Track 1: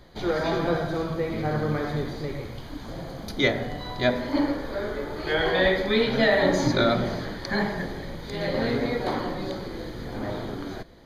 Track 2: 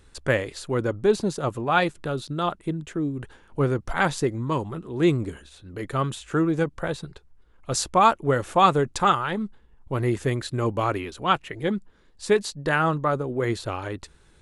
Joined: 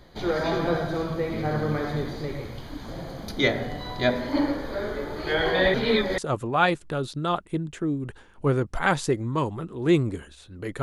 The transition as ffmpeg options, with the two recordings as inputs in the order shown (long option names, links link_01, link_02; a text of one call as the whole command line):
ffmpeg -i cue0.wav -i cue1.wav -filter_complex "[0:a]apad=whole_dur=10.82,atrim=end=10.82,asplit=2[link_01][link_02];[link_01]atrim=end=5.742[link_03];[link_02]atrim=start=5.738:end=6.182,asetpts=PTS-STARTPTS,areverse[link_04];[1:a]atrim=start=1.318:end=5.96[link_05];[link_03][link_04]acrossfade=duration=0.004:curve1=hsin:curve2=hsin[link_06];[link_06][link_05]acrossfade=duration=0.004:curve1=hsin:curve2=hsin" out.wav